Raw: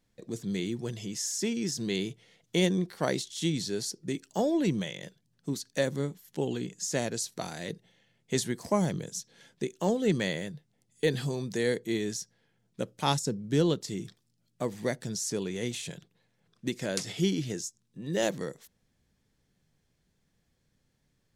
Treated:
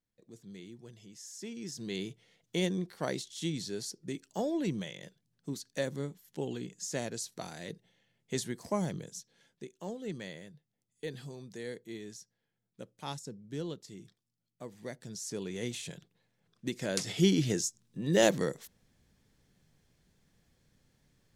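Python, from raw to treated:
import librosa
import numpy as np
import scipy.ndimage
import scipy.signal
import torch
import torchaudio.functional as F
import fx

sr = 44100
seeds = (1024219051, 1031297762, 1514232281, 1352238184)

y = fx.gain(x, sr, db=fx.line((1.17, -16.0), (2.02, -5.5), (8.98, -5.5), (9.66, -13.0), (14.75, -13.0), (15.59, -3.5), (16.69, -3.5), (17.45, 4.0)))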